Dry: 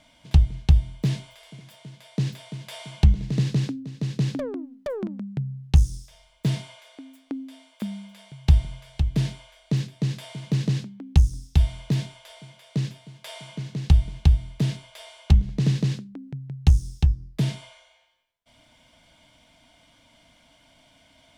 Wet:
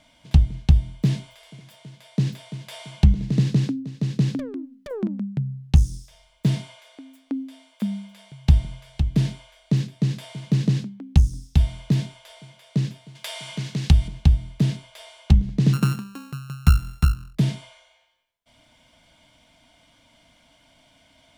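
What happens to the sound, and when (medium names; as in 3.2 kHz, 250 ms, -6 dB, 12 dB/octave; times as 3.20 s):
4.35–4.91 s: peaking EQ 730 Hz -12.5 dB 1.2 oct
13.15–14.08 s: tape noise reduction on one side only encoder only
15.73–17.35 s: sorted samples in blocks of 32 samples
whole clip: dynamic bell 220 Hz, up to +6 dB, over -37 dBFS, Q 1.1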